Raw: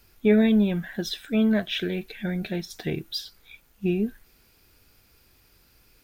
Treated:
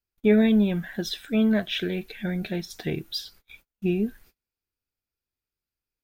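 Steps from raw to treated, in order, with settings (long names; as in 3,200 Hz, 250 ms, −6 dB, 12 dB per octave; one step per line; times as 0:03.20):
noise gate −51 dBFS, range −32 dB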